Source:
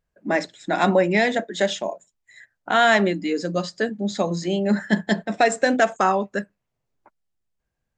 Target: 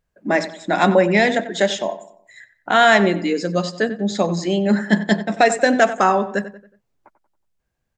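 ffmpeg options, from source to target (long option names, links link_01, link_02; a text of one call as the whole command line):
ffmpeg -i in.wav -filter_complex "[0:a]asplit=2[link_01][link_02];[link_02]adelay=92,lowpass=frequency=2700:poles=1,volume=-13dB,asplit=2[link_03][link_04];[link_04]adelay=92,lowpass=frequency=2700:poles=1,volume=0.43,asplit=2[link_05][link_06];[link_06]adelay=92,lowpass=frequency=2700:poles=1,volume=0.43,asplit=2[link_07][link_08];[link_08]adelay=92,lowpass=frequency=2700:poles=1,volume=0.43[link_09];[link_01][link_03][link_05][link_07][link_09]amix=inputs=5:normalize=0,volume=3.5dB" out.wav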